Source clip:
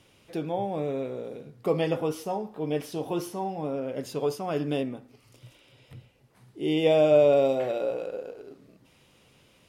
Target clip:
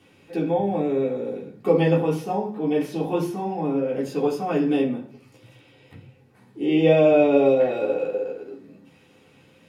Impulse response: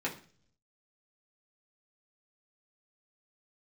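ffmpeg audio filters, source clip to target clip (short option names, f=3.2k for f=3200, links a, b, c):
-filter_complex "[0:a]asettb=1/sr,asplit=3[a][b][c];[a]atrim=end=6.644[d];[b]atrim=start=6.64:end=7.72,asetpts=PTS-STARTPTS,afade=t=in:d=0.004:c=qsin,afade=t=out:st=1.076:d=0.004:c=qsin,equalizer=f=10k:t=o:w=0.76:g=-12.5[e];[c]atrim=start=7.716[f];[d][e]acrossfade=d=0.004:c1=hsin:c2=qsin[g];[g][f]acrossfade=d=0.004:c1=qsin:c2=hsin[h];[1:a]atrim=start_sample=2205[i];[h][i]afir=irnorm=-1:irlink=0"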